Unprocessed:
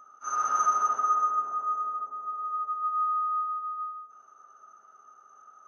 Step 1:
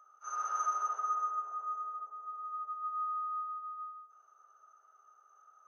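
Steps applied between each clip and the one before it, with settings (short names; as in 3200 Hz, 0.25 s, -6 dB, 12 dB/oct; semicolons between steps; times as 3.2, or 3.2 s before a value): HPF 430 Hz 24 dB/oct; gain -8.5 dB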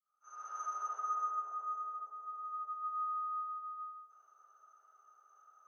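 opening faded in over 1.30 s; gain -1.5 dB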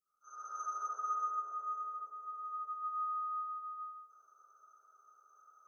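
EQ curve 480 Hz 0 dB, 860 Hz -10 dB, 1400 Hz 0 dB, 2200 Hz -27 dB, 5100 Hz -2 dB; gain +2.5 dB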